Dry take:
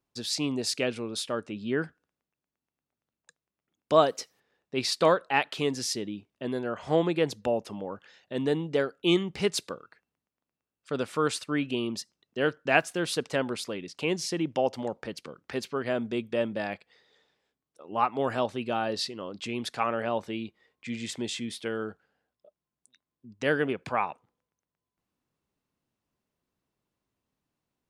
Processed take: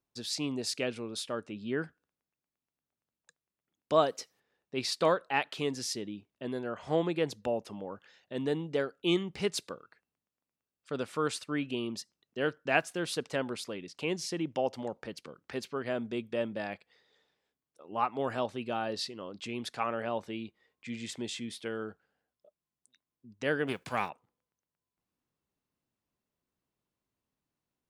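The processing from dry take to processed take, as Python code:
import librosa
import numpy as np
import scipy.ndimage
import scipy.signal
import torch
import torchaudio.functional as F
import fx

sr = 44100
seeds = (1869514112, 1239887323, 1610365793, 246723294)

y = fx.envelope_flatten(x, sr, power=0.6, at=(23.67, 24.08), fade=0.02)
y = y * librosa.db_to_amplitude(-4.5)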